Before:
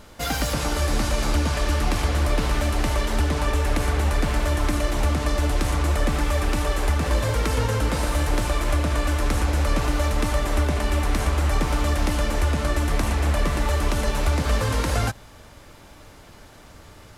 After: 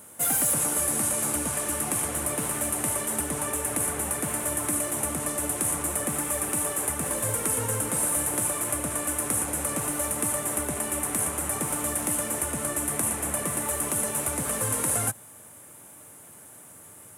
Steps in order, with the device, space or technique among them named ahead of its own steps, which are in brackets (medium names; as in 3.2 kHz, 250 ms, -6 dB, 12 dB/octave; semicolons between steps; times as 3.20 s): budget condenser microphone (high-pass 110 Hz 24 dB/octave; resonant high shelf 6.8 kHz +14 dB, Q 3); trim -5.5 dB